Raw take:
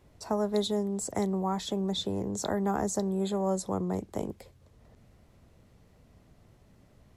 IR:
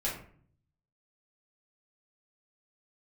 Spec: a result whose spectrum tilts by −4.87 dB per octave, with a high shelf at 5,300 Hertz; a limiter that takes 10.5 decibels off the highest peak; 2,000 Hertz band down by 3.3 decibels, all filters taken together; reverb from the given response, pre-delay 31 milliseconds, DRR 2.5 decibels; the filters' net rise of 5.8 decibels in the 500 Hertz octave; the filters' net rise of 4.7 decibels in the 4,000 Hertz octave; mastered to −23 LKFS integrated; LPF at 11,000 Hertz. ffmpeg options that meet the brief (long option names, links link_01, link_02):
-filter_complex "[0:a]lowpass=11000,equalizer=frequency=500:width_type=o:gain=8,equalizer=frequency=2000:width_type=o:gain=-6,equalizer=frequency=4000:width_type=o:gain=8.5,highshelf=frequency=5300:gain=-5,alimiter=limit=-21dB:level=0:latency=1,asplit=2[link_01][link_02];[1:a]atrim=start_sample=2205,adelay=31[link_03];[link_02][link_03]afir=irnorm=-1:irlink=0,volume=-8dB[link_04];[link_01][link_04]amix=inputs=2:normalize=0,volume=5.5dB"